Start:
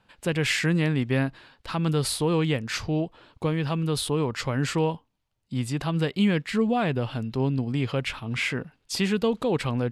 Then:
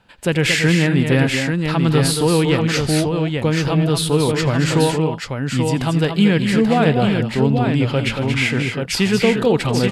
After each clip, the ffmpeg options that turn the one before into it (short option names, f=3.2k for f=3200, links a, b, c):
-af "aecho=1:1:85|155|220|231|835:0.112|0.106|0.133|0.447|0.562,deesser=0.35,bandreject=f=1.1k:w=14,volume=7.5dB"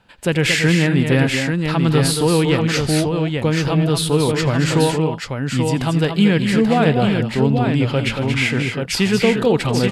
-af anull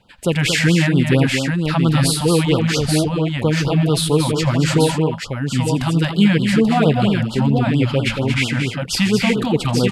-af "afftfilt=real='re*(1-between(b*sr/1024,340*pow(2100/340,0.5+0.5*sin(2*PI*4.4*pts/sr))/1.41,340*pow(2100/340,0.5+0.5*sin(2*PI*4.4*pts/sr))*1.41))':imag='im*(1-between(b*sr/1024,340*pow(2100/340,0.5+0.5*sin(2*PI*4.4*pts/sr))/1.41,340*pow(2100/340,0.5+0.5*sin(2*PI*4.4*pts/sr))*1.41))':win_size=1024:overlap=0.75,volume=1dB"